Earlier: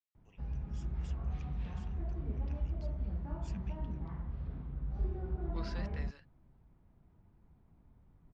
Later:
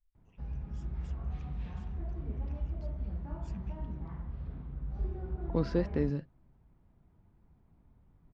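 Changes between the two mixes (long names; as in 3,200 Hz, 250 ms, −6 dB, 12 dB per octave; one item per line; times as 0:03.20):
first voice −5.0 dB
second voice: remove high-pass filter 1,500 Hz 12 dB per octave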